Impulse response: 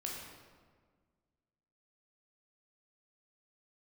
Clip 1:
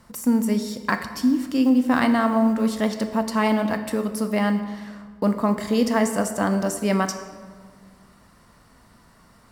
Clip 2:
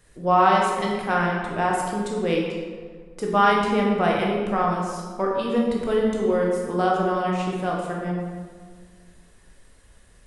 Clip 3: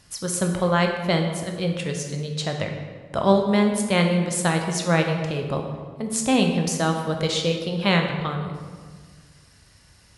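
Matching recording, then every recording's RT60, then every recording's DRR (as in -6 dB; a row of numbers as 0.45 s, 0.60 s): 2; 1.7 s, 1.6 s, 1.6 s; 7.5 dB, -2.5 dB, 3.0 dB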